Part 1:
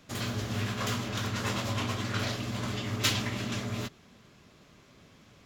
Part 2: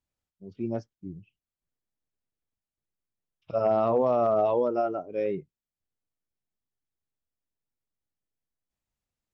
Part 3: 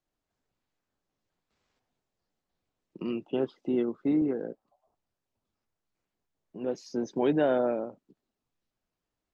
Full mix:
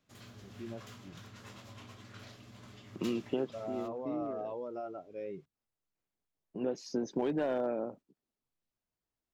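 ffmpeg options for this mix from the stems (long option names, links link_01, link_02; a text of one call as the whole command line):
ffmpeg -i stem1.wav -i stem2.wav -i stem3.wav -filter_complex "[0:a]volume=-19.5dB[link_01];[1:a]alimiter=limit=-20.5dB:level=0:latency=1,volume=-12dB,asplit=2[link_02][link_03];[2:a]agate=range=-9dB:threshold=-51dB:ratio=16:detection=peak,volume=1.5dB[link_04];[link_03]apad=whole_len=411597[link_05];[link_04][link_05]sidechaincompress=threshold=-51dB:ratio=8:attack=16:release=301[link_06];[link_01][link_02][link_06]amix=inputs=3:normalize=0,asoftclip=type=hard:threshold=-16.5dB,acompressor=threshold=-29dB:ratio=6" out.wav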